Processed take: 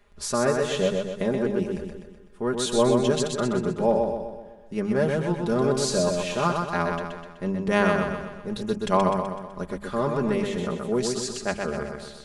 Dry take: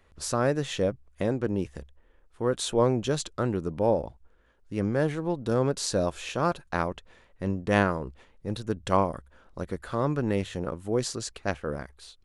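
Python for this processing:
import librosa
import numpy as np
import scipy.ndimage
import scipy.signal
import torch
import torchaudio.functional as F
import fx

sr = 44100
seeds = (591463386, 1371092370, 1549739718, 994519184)

p1 = fx.hum_notches(x, sr, base_hz=50, count=4)
p2 = p1 + 0.78 * np.pad(p1, (int(4.9 * sr / 1000.0), 0))[:len(p1)]
y = p2 + fx.echo_feedback(p2, sr, ms=126, feedback_pct=51, wet_db=-4.0, dry=0)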